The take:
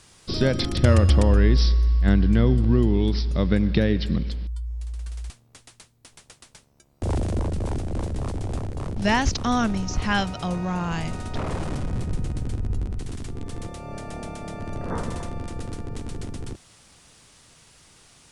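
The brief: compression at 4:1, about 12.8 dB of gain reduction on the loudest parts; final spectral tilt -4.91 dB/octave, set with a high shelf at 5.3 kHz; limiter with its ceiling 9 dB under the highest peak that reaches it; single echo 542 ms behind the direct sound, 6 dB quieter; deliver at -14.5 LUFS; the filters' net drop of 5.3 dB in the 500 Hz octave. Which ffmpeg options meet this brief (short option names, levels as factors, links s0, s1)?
-af "equalizer=f=500:t=o:g=-7,highshelf=f=5300:g=9,acompressor=threshold=0.0355:ratio=4,alimiter=level_in=1.26:limit=0.0631:level=0:latency=1,volume=0.794,aecho=1:1:542:0.501,volume=11.2"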